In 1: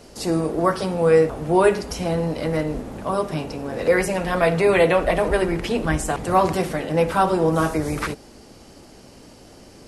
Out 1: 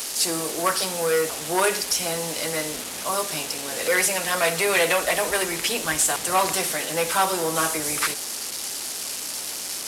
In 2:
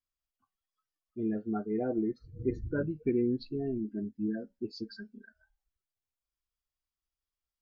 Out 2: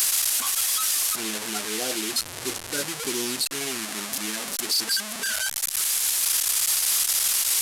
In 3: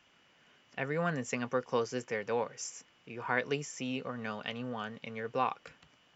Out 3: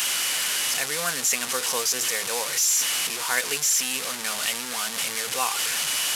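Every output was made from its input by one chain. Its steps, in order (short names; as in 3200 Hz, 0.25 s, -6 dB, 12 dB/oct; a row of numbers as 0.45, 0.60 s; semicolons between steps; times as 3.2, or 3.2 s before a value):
delta modulation 64 kbps, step -31 dBFS; tilt +4.5 dB/oct; core saturation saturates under 1000 Hz; match loudness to -23 LUFS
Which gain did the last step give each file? -0.5, +5.0, +4.0 dB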